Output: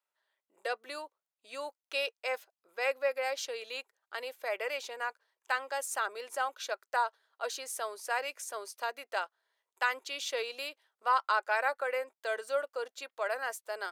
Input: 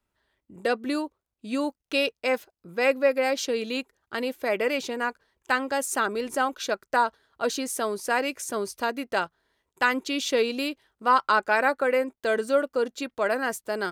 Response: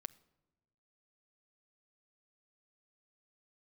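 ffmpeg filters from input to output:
-af "highpass=frequency=530:width=0.5412,highpass=frequency=530:width=1.3066,volume=-7dB"

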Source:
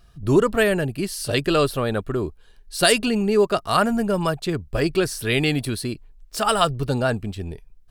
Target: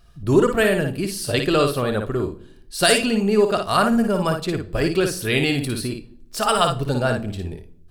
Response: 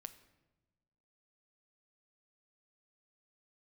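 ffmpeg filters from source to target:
-filter_complex "[0:a]asplit=2[link_01][link_02];[1:a]atrim=start_sample=2205,asetrate=83790,aresample=44100,adelay=56[link_03];[link_02][link_03]afir=irnorm=-1:irlink=0,volume=6dB[link_04];[link_01][link_04]amix=inputs=2:normalize=0"

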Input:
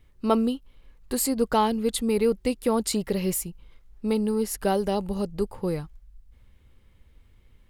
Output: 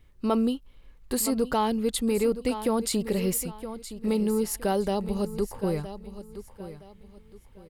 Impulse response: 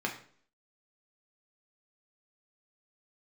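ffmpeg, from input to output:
-filter_complex "[0:a]aecho=1:1:967|1934|2901:0.2|0.0599|0.018,asplit=2[link_01][link_02];[link_02]alimiter=limit=-18dB:level=0:latency=1,volume=3dB[link_03];[link_01][link_03]amix=inputs=2:normalize=0,volume=-7.5dB"

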